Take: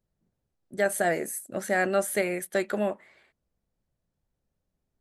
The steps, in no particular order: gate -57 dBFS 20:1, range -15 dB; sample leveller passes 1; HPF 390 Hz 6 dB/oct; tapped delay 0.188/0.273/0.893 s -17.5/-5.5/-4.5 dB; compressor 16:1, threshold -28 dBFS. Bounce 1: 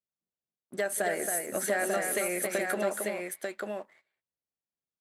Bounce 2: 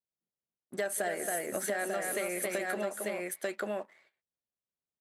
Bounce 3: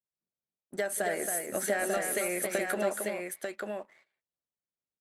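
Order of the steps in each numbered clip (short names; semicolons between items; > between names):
compressor > tapped delay > sample leveller > gate > HPF; gate > sample leveller > tapped delay > compressor > HPF; HPF > sample leveller > compressor > gate > tapped delay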